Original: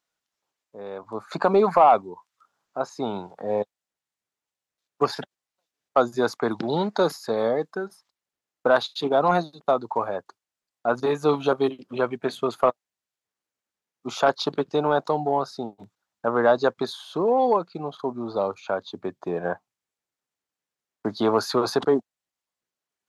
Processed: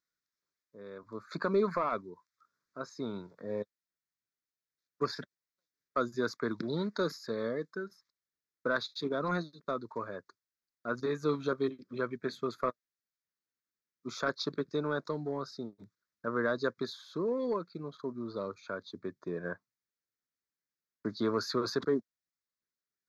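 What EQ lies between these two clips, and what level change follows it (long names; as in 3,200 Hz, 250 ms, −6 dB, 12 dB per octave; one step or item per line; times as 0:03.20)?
phaser with its sweep stopped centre 2,900 Hz, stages 6
−6.0 dB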